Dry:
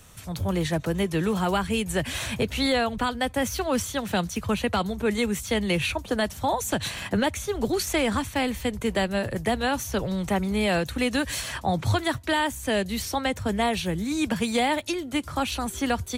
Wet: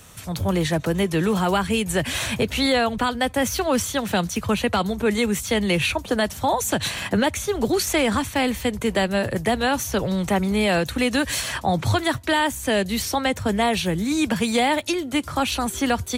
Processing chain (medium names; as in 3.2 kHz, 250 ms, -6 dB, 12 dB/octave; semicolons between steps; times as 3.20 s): bass shelf 67 Hz -7.5 dB; in parallel at -1.5 dB: peak limiter -19 dBFS, peak gain reduction 5.5 dB